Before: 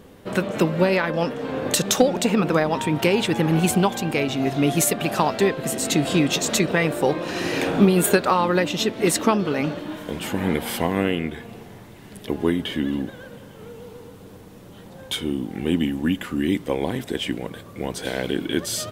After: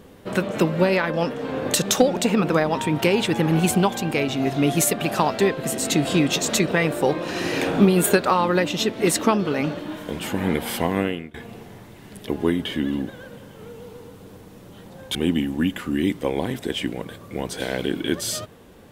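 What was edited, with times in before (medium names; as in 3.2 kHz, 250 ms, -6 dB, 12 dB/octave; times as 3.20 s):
10.98–11.34 s: fade out, to -23.5 dB
15.15–15.60 s: delete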